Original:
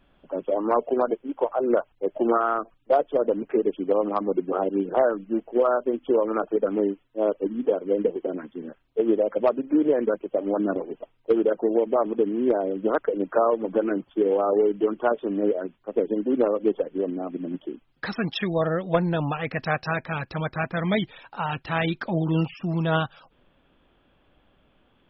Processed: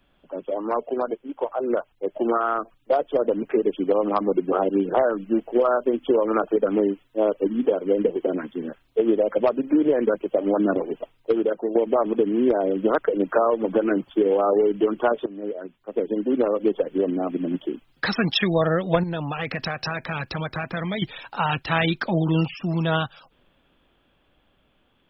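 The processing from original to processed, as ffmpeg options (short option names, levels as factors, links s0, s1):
-filter_complex "[0:a]asettb=1/sr,asplit=3[s0][s1][s2];[s0]atrim=end=19.034[s3];[s1]atrim=start=19.03:end=21.02,asetpts=PTS-STARTPTS,afade=t=in:d=0.004:c=qsin,afade=t=out:st=1.986:d=0.004:c=qsin,acompressor=threshold=0.0316:ratio=6:attack=3.2:release=140:knee=1:detection=peak[s4];[s2]atrim=start=21.016[s5];[s3][s4]acrossfade=d=0.004:c1=hsin:c2=qsin[s6];[s6][s5]acrossfade=d=0.004:c1=qsin:c2=hsin,asplit=3[s7][s8][s9];[s7]atrim=end=11.75,asetpts=PTS-STARTPTS,afade=t=out:st=10.97:d=0.78:silence=0.316228[s10];[s8]atrim=start=11.75:end=15.26,asetpts=PTS-STARTPTS,afade=t=in:d=0.004:c=hsin:silence=0.316228,afade=t=out:st=3.506:d=0.004:c=hsin:silence=0.112202[s11];[s9]atrim=start=15.26,asetpts=PTS-STARTPTS,afade=t=in:d=1.7:silence=0.112202[s12];[s10][s11][s12]concat=n=3:v=0:a=1,dynaudnorm=f=190:g=31:m=3.76,highshelf=f=2900:g=7.5,acrossover=split=130[s13][s14];[s14]acompressor=threshold=0.2:ratio=3[s15];[s13][s15]amix=inputs=2:normalize=0,volume=0.708"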